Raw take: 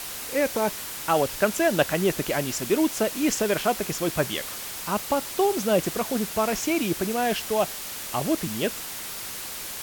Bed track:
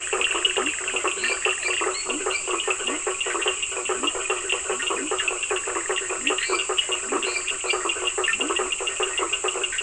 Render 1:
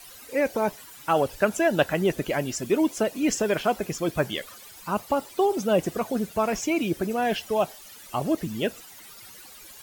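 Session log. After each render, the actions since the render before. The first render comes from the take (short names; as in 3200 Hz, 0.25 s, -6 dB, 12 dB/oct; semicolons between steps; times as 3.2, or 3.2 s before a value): denoiser 15 dB, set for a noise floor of -35 dBFS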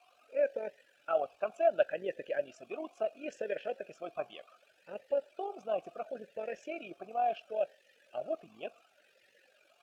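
AM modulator 46 Hz, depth 35%; vowel sweep a-e 0.7 Hz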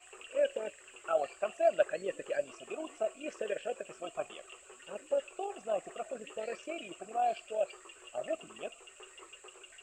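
add bed track -28 dB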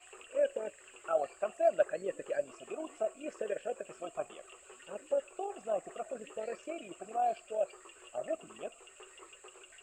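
dynamic EQ 3200 Hz, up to -8 dB, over -56 dBFS, Q 1; notch 5900 Hz, Q 6.7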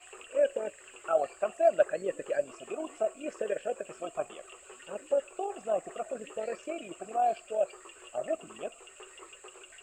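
gain +4 dB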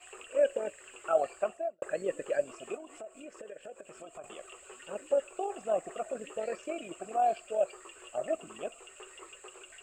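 1.38–1.82 studio fade out; 2.75–4.24 compressor 3:1, threshold -46 dBFS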